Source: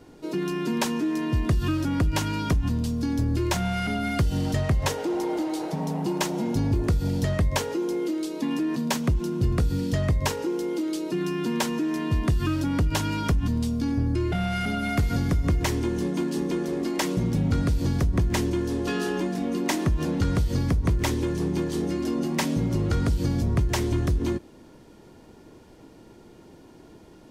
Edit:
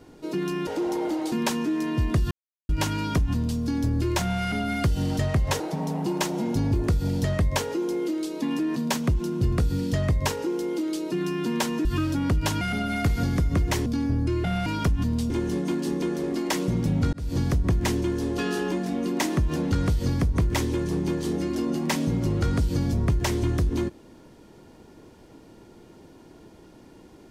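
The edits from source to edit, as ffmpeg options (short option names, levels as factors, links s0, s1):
-filter_complex "[0:a]asplit=12[s0][s1][s2][s3][s4][s5][s6][s7][s8][s9][s10][s11];[s0]atrim=end=0.672[s12];[s1]atrim=start=4.948:end=5.602[s13];[s2]atrim=start=0.668:end=1.66,asetpts=PTS-STARTPTS,afade=t=out:st=0.988:d=0.004:c=hsin[s14];[s3]atrim=start=1.66:end=2.04,asetpts=PTS-STARTPTS,volume=0[s15];[s4]atrim=start=2.04:end=4.952,asetpts=PTS-STARTPTS,afade=t=in:d=0.004:c=hsin[s16];[s5]atrim=start=5.598:end=11.852[s17];[s6]atrim=start=12.338:end=13.102[s18];[s7]atrim=start=14.538:end=15.792[s19];[s8]atrim=start=13.738:end=14.542[s20];[s9]atrim=start=13.098:end=13.742[s21];[s10]atrim=start=15.788:end=17.62,asetpts=PTS-STARTPTS,afade=t=out:st=1.828:d=0.004:c=hsin[s22];[s11]atrim=start=17.62,asetpts=PTS-STARTPTS,afade=t=in:d=0.25[s23];[s12][s13]acrossfade=d=0.004:c1=hsin:c2=hsin[s24];[s14][s15][s16]concat=n=3:v=0:a=1[s25];[s24][s25]acrossfade=d=0.004:c1=hsin:c2=hsin[s26];[s26][s17]acrossfade=d=0.004:c1=hsin:c2=hsin[s27];[s27][s18]acrossfade=d=0.004:c1=hsin:c2=hsin[s28];[s28][s19]acrossfade=d=0.004:c1=hsin:c2=hsin[s29];[s29][s20]acrossfade=d=0.004:c1=hsin:c2=hsin[s30];[s30][s21]acrossfade=d=0.004:c1=hsin:c2=hsin[s31];[s22][s23]concat=n=2:v=0:a=1[s32];[s31][s32]acrossfade=d=0.004:c1=hsin:c2=hsin"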